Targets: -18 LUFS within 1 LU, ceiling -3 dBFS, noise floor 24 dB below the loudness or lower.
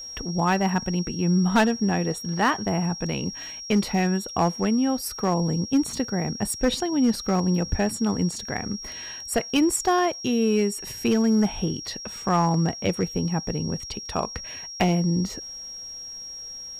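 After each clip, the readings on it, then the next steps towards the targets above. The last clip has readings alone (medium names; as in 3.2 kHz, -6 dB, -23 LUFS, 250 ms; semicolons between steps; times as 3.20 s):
clipped samples 0.6%; clipping level -14.0 dBFS; steady tone 5.6 kHz; tone level -35 dBFS; loudness -25.0 LUFS; peak level -14.0 dBFS; loudness target -18.0 LUFS
-> clip repair -14 dBFS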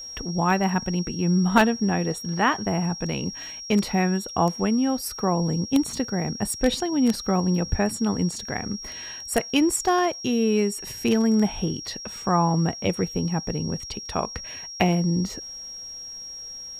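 clipped samples 0.0%; steady tone 5.6 kHz; tone level -35 dBFS
-> band-stop 5.6 kHz, Q 30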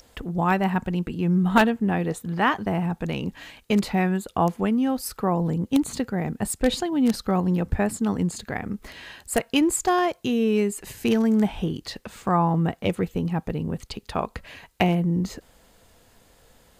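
steady tone not found; loudness -24.5 LUFS; peak level -5.0 dBFS; loudness target -18.0 LUFS
-> trim +6.5 dB; peak limiter -3 dBFS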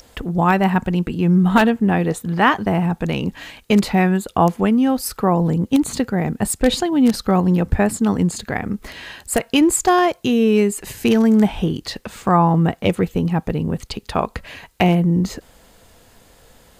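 loudness -18.0 LUFS; peak level -3.0 dBFS; noise floor -52 dBFS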